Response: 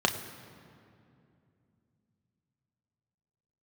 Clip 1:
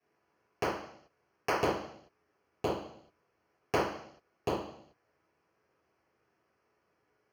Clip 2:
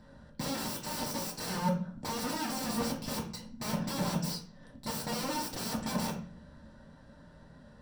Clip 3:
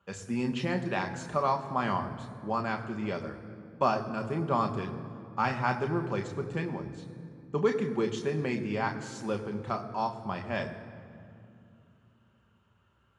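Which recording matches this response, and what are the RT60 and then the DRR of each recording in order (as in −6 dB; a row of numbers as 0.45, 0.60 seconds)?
3; 0.65, 0.45, 2.6 seconds; −12.0, −4.0, 4.0 decibels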